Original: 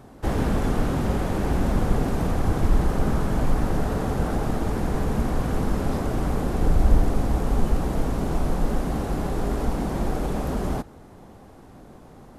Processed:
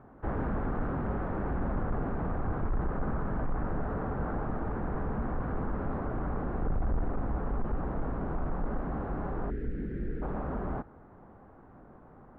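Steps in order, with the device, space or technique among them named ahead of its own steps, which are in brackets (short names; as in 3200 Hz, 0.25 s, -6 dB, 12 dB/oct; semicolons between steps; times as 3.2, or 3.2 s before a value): 9.5–10.22 Chebyshev band-stop 440–1700 Hz, order 3; overdriven synthesiser ladder filter (soft clip -16 dBFS, distortion -14 dB; ladder low-pass 1800 Hz, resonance 35%)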